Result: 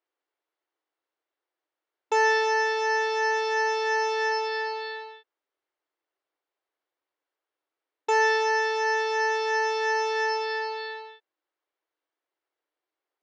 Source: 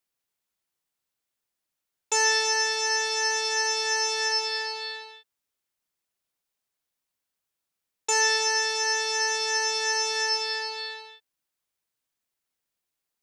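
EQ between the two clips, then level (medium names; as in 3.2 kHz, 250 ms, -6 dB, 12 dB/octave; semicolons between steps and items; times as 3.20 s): brick-wall FIR high-pass 280 Hz; tape spacing loss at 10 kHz 37 dB; band-stop 2.5 kHz, Q 21; +8.0 dB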